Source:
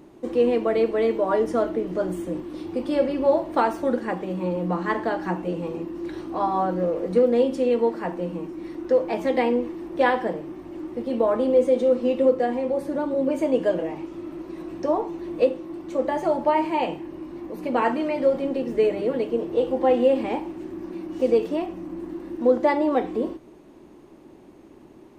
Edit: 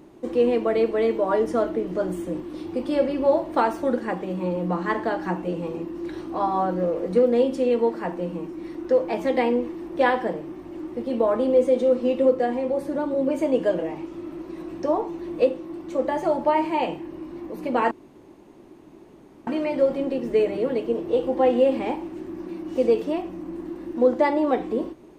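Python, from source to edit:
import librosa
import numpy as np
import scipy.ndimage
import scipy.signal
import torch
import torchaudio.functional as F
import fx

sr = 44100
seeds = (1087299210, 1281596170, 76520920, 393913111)

y = fx.edit(x, sr, fx.insert_room_tone(at_s=17.91, length_s=1.56), tone=tone)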